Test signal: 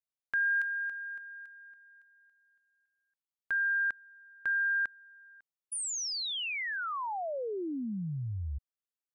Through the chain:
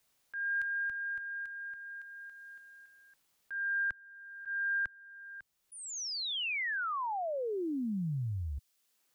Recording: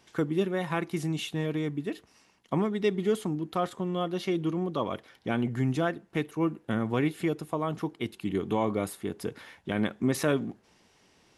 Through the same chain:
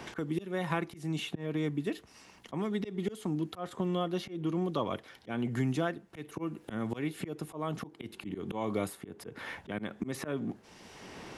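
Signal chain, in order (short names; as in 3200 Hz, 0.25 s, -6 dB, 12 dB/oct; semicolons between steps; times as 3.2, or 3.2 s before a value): auto swell 0.306 s; three-band squash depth 70%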